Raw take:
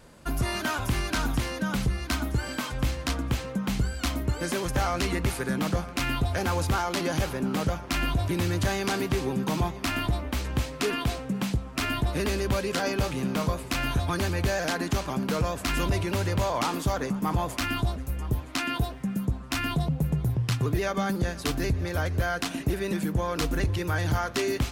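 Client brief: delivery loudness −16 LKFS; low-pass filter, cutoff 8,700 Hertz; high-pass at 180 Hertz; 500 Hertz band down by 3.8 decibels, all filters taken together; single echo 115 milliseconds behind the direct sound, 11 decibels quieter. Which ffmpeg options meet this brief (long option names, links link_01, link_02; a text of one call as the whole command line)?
ffmpeg -i in.wav -af "highpass=180,lowpass=8700,equalizer=frequency=500:width_type=o:gain=-5,aecho=1:1:115:0.282,volume=15dB" out.wav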